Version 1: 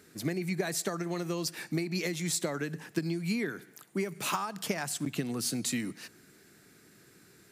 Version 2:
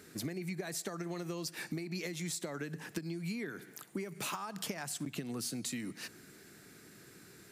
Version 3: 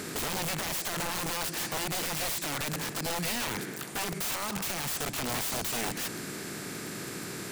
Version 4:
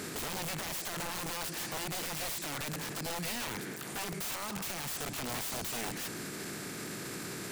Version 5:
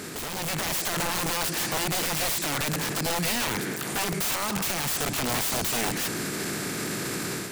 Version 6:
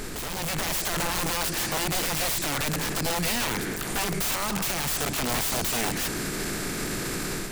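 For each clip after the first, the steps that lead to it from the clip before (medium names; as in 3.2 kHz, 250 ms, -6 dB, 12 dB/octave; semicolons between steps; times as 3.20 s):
compression 6:1, threshold -39 dBFS, peak gain reduction 13.5 dB; trim +2.5 dB
spectral levelling over time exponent 0.6; integer overflow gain 33 dB; trim +6 dB
peak limiter -38 dBFS, peak gain reduction 11 dB; trim +6 dB
level rider gain up to 7 dB; trim +3 dB
added noise brown -39 dBFS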